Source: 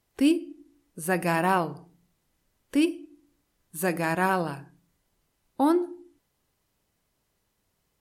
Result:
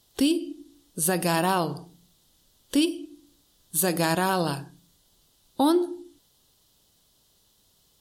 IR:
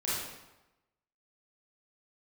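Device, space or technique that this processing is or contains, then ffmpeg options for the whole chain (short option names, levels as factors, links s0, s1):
over-bright horn tweeter: -af "highshelf=f=2800:t=q:w=3:g=6.5,alimiter=limit=0.112:level=0:latency=1:release=172,volume=2"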